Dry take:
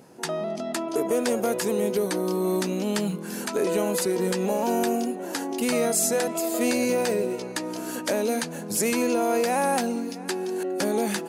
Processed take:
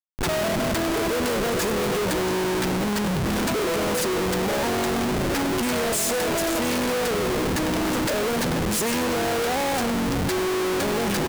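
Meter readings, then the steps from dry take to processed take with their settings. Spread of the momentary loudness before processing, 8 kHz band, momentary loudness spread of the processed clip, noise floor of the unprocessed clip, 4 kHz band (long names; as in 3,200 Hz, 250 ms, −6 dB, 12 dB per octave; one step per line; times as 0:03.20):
7 LU, +0.5 dB, 1 LU, −36 dBFS, +6.5 dB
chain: echo with shifted repeats 102 ms, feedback 62%, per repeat −51 Hz, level −12.5 dB
comparator with hysteresis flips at −34 dBFS
level +2 dB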